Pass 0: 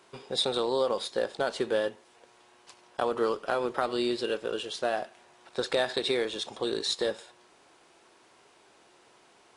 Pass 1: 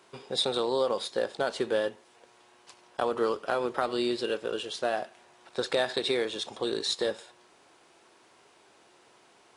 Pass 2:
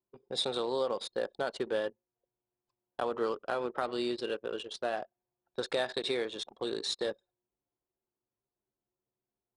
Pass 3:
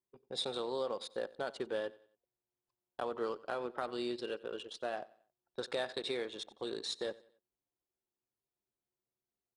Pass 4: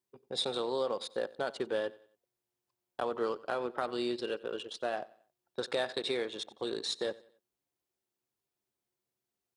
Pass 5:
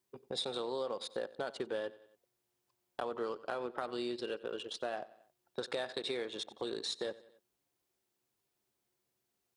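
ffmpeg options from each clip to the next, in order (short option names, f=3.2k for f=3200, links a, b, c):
-af "highpass=47"
-af "anlmdn=1.58,volume=-4.5dB"
-af "aecho=1:1:91|182|273:0.0891|0.0348|0.0136,volume=-5dB"
-af "highpass=63,volume=4dB"
-af "acompressor=threshold=-47dB:ratio=2,volume=5dB"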